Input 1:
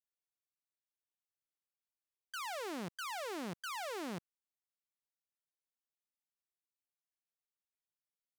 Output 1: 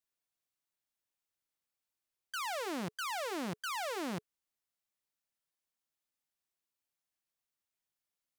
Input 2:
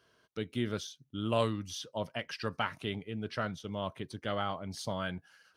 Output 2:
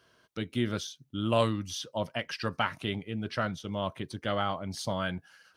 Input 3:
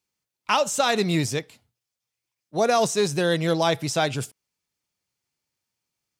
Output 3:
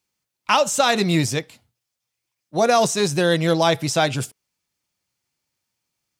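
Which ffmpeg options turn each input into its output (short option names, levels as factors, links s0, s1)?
-af "bandreject=f=430:w=12,volume=1.58"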